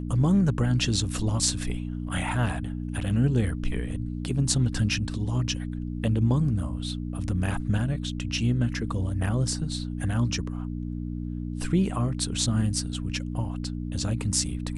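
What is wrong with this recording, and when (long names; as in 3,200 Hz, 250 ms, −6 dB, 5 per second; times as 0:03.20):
mains hum 60 Hz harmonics 5 −32 dBFS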